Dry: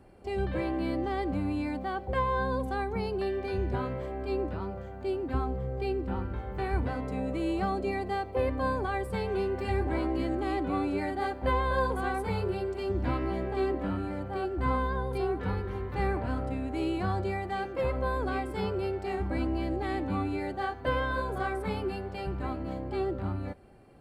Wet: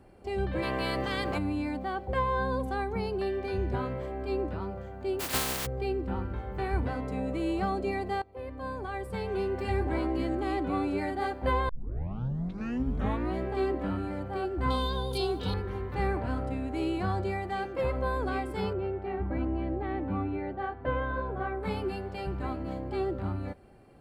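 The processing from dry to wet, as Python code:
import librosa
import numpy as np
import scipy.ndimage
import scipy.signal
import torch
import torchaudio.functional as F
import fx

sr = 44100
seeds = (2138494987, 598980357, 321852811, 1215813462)

y = fx.spec_clip(x, sr, under_db=22, at=(0.62, 1.37), fade=0.02)
y = fx.spec_flatten(y, sr, power=0.21, at=(5.19, 5.65), fade=0.02)
y = fx.high_shelf_res(y, sr, hz=2600.0, db=10.5, q=3.0, at=(14.7, 15.54))
y = fx.air_absorb(y, sr, metres=480.0, at=(18.73, 21.63))
y = fx.edit(y, sr, fx.fade_in_from(start_s=8.22, length_s=1.33, floor_db=-18.0),
    fx.tape_start(start_s=11.69, length_s=1.69), tone=tone)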